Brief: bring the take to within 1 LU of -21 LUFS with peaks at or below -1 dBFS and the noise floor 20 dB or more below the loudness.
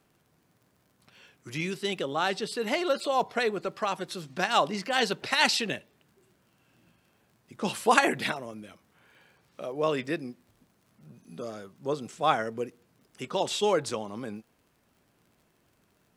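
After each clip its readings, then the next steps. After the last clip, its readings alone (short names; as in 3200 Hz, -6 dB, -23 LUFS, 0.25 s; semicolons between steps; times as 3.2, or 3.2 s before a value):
ticks 48/s; loudness -29.0 LUFS; peak -2.5 dBFS; loudness target -21.0 LUFS
-> de-click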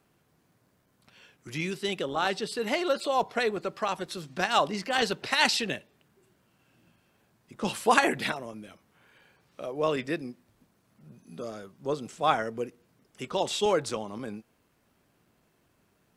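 ticks 0.25/s; loudness -29.0 LUFS; peak -4.5 dBFS; loudness target -21.0 LUFS
-> gain +8 dB; limiter -1 dBFS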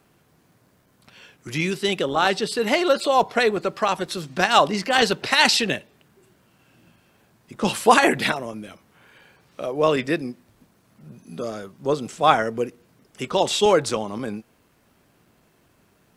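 loudness -21.5 LUFS; peak -1.0 dBFS; noise floor -61 dBFS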